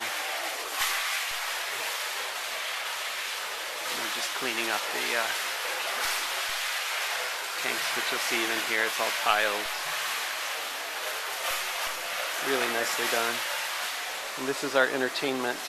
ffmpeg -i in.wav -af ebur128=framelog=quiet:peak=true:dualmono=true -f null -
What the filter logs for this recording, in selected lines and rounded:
Integrated loudness:
  I:         -25.3 LUFS
  Threshold: -35.3 LUFS
Loudness range:
  LRA:         3.0 LU
  Threshold: -45.3 LUFS
  LRA low:   -26.9 LUFS
  LRA high:  -23.8 LUFS
True peak:
  Peak:       -7.1 dBFS